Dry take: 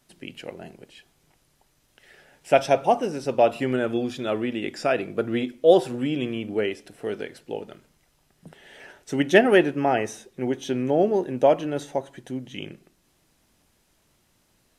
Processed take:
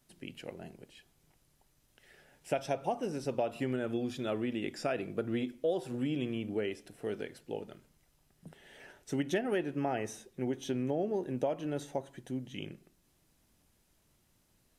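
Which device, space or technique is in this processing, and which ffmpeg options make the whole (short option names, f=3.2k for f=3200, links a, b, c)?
ASMR close-microphone chain: -af "lowshelf=f=250:g=6,acompressor=threshold=-20dB:ratio=6,highshelf=f=9.4k:g=6.5,volume=-8.5dB"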